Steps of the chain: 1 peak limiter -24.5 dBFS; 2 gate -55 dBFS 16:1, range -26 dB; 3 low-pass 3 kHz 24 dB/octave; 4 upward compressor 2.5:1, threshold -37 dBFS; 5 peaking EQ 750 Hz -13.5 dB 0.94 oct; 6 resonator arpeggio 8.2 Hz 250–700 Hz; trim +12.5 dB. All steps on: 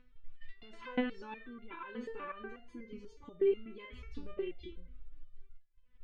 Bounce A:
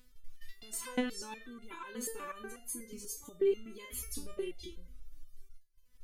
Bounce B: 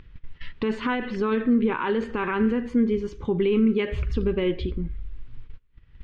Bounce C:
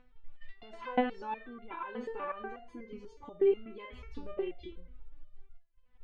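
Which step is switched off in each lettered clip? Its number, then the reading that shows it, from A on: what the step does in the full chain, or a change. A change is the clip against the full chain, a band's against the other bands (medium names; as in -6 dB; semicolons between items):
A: 3, 4 kHz band +6.0 dB; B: 6, 250 Hz band +4.5 dB; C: 5, 1 kHz band +7.5 dB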